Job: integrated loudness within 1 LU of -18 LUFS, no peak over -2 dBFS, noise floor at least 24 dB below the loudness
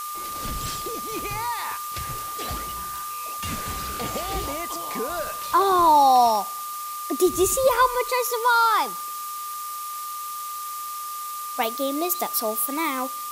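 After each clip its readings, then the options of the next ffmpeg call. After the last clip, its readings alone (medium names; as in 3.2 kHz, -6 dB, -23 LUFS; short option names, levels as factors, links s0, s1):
steady tone 1.2 kHz; tone level -31 dBFS; noise floor -33 dBFS; noise floor target -48 dBFS; loudness -24.0 LUFS; peak level -8.0 dBFS; loudness target -18.0 LUFS
-> -af "bandreject=f=1200:w=30"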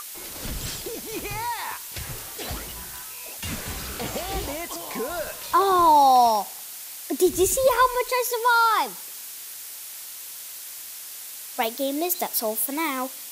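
steady tone not found; noise floor -39 dBFS; noise floor target -48 dBFS
-> -af "afftdn=nr=9:nf=-39"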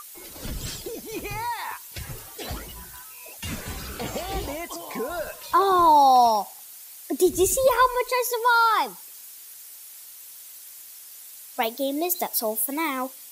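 noise floor -44 dBFS; noise floor target -48 dBFS
-> -af "afftdn=nr=6:nf=-44"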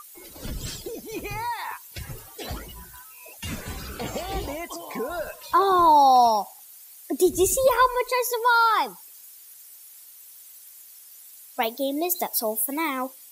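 noise floor -48 dBFS; loudness -23.5 LUFS; peak level -9.0 dBFS; loudness target -18.0 LUFS
-> -af "volume=1.88"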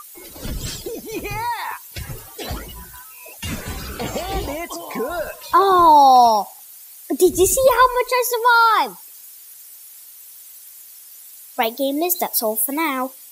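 loudness -18.0 LUFS; peak level -3.5 dBFS; noise floor -42 dBFS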